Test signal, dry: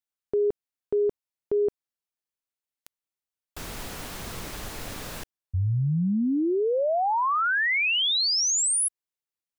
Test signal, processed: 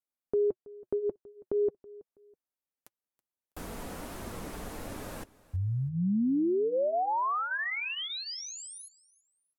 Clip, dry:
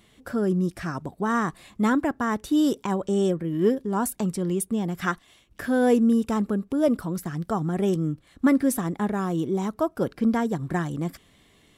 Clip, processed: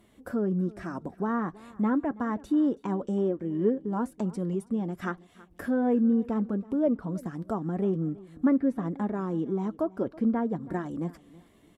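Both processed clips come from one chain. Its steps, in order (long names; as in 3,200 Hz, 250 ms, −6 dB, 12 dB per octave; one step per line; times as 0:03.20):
low-shelf EQ 96 Hz −7.5 dB
flanger 1.2 Hz, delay 3 ms, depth 1.5 ms, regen −53%
treble cut that deepens with the level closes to 2,400 Hz, closed at −22.5 dBFS
parametric band 4,100 Hz −12 dB 3 octaves
in parallel at −0.5 dB: downward compressor, threshold −41 dBFS
on the sum: repeating echo 326 ms, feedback 27%, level −21 dB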